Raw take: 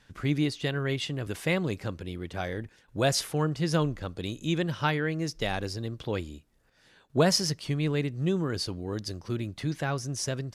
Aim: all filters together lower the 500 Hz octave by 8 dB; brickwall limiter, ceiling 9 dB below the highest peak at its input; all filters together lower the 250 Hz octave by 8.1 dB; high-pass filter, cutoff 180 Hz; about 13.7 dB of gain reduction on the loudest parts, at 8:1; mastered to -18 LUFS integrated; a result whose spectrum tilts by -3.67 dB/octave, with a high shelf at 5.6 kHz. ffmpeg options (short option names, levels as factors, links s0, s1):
-af "highpass=180,equalizer=f=250:t=o:g=-7,equalizer=f=500:t=o:g=-8,highshelf=f=5600:g=4,acompressor=threshold=0.02:ratio=8,volume=15,alimiter=limit=0.501:level=0:latency=1"